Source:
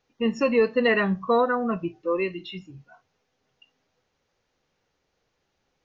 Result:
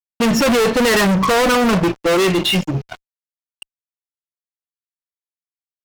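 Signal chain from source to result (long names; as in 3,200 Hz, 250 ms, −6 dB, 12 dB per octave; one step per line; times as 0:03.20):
fuzz pedal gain 41 dB, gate −49 dBFS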